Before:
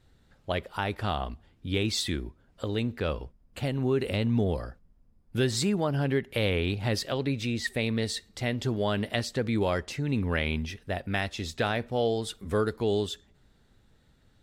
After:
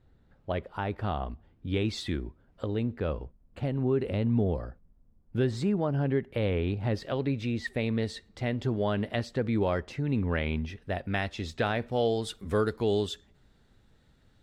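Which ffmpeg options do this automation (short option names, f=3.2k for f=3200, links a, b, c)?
-af "asetnsamples=n=441:p=0,asendcmd='1.68 lowpass f 1800;2.66 lowpass f 1000;7.02 lowpass f 1700;10.82 lowpass f 3000;11.82 lowpass f 7600',lowpass=f=1.1k:p=1"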